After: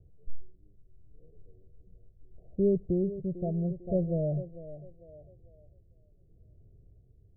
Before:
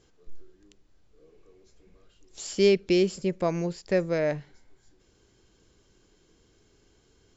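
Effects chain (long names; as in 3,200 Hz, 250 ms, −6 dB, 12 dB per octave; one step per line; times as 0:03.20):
Butterworth low-pass 710 Hz 96 dB per octave
low shelf with overshoot 180 Hz +13 dB, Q 1.5
feedback echo with a high-pass in the loop 448 ms, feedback 35%, high-pass 280 Hz, level −8.5 dB
amplitude tremolo 0.75 Hz, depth 40%
level −4 dB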